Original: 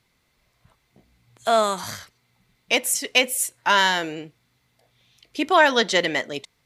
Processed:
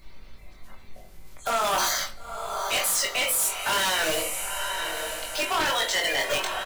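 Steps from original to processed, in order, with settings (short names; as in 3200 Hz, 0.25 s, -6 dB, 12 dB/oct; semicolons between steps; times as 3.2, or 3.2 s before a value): bin magnitudes rounded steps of 30 dB; HPF 540 Hz 24 dB/oct; in parallel at -7.5 dB: requantised 6-bit, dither none; on the sum: added noise brown -60 dBFS; reverse; compressor, threshold -25 dBFS, peak gain reduction 15 dB; reverse; high shelf 11000 Hz +5.5 dB; limiter -24 dBFS, peak gain reduction 11.5 dB; diffused feedback echo 0.954 s, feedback 51%, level -8 dB; shoebox room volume 260 m³, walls furnished, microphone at 1.1 m; wavefolder -28.5 dBFS; doubler 22 ms -4.5 dB; gain +8.5 dB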